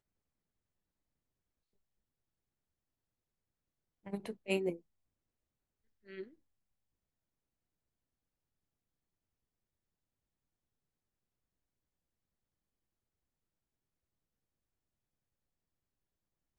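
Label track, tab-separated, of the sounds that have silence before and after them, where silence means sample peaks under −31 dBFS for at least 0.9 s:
4.140000	4.700000	sound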